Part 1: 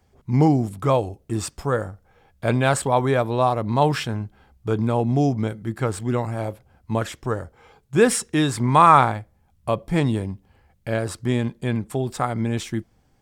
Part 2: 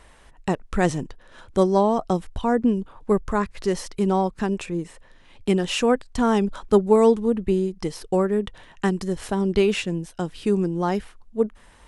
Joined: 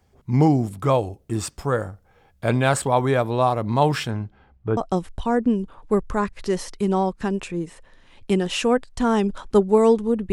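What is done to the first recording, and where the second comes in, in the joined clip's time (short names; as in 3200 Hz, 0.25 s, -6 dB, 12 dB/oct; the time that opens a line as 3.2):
part 1
4.1–4.77 LPF 6800 Hz -> 1500 Hz
4.77 switch to part 2 from 1.95 s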